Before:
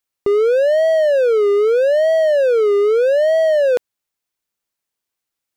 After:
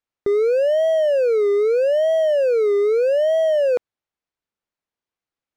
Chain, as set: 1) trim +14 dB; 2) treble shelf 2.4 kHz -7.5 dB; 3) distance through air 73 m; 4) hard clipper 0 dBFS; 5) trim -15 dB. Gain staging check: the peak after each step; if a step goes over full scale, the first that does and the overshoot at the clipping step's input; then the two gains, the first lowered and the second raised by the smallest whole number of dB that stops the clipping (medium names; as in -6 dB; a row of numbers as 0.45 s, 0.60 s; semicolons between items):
+5.0 dBFS, +4.0 dBFS, +4.0 dBFS, 0.0 dBFS, -15.0 dBFS; step 1, 4.0 dB; step 1 +10 dB, step 5 -11 dB